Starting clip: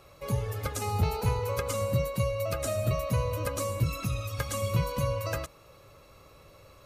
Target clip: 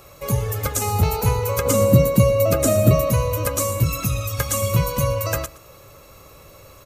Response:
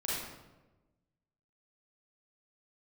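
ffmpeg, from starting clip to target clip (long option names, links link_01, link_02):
-filter_complex "[0:a]aexciter=amount=2.5:drive=3.1:freq=6100,asettb=1/sr,asplit=3[link_01][link_02][link_03];[link_01]atrim=end=1.654[link_04];[link_02]atrim=start=1.65:end=3.11,asetpts=PTS-STARTPTS,afade=type=in:duration=0.004:curve=qsin,afade=type=out:start_time=1.456:duration=0.004:curve=qsin,equalizer=frequency=260:width_type=o:width=1.8:gain=13[link_05];[link_03]atrim=start=3.106[link_06];[link_04][link_05]acrossfade=duration=0.004:curve1=hsin:curve2=qsin[link_07];[link_07][link_06]acrossfade=duration=0.004:curve1=qsin:curve2=hsin,aecho=1:1:119:0.106,volume=8dB"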